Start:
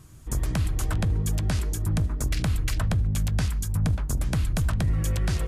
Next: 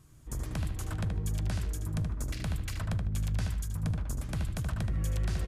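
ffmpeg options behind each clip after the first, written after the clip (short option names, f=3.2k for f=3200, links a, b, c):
-filter_complex "[0:a]asplit=2[a][b];[b]adelay=76,lowpass=f=3.6k:p=1,volume=-4dB,asplit=2[c][d];[d]adelay=76,lowpass=f=3.6k:p=1,volume=0.29,asplit=2[e][f];[f]adelay=76,lowpass=f=3.6k:p=1,volume=0.29,asplit=2[g][h];[h]adelay=76,lowpass=f=3.6k:p=1,volume=0.29[i];[a][c][e][g][i]amix=inputs=5:normalize=0,volume=-9dB"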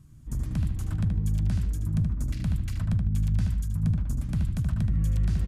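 -af "lowshelf=f=310:t=q:w=1.5:g=9.5,volume=-4dB"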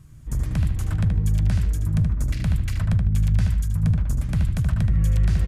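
-af "equalizer=f=250:t=o:w=1:g=-6,equalizer=f=500:t=o:w=1:g=4,equalizer=f=2k:t=o:w=1:g=4,volume=6dB"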